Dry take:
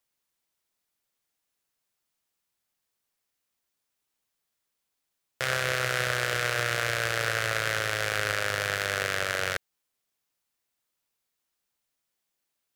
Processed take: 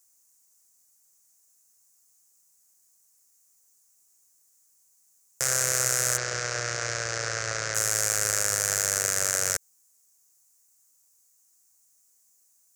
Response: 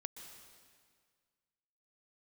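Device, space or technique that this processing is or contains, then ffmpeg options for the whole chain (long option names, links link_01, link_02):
over-bright horn tweeter: -filter_complex "[0:a]highshelf=frequency=4800:width_type=q:width=3:gain=13,alimiter=limit=-8.5dB:level=0:latency=1:release=61,asplit=3[link_01][link_02][link_03];[link_01]afade=type=out:start_time=6.16:duration=0.02[link_04];[link_02]lowpass=frequency=5400:width=0.5412,lowpass=frequency=5400:width=1.3066,afade=type=in:start_time=6.16:duration=0.02,afade=type=out:start_time=7.74:duration=0.02[link_05];[link_03]afade=type=in:start_time=7.74:duration=0.02[link_06];[link_04][link_05][link_06]amix=inputs=3:normalize=0,volume=3dB"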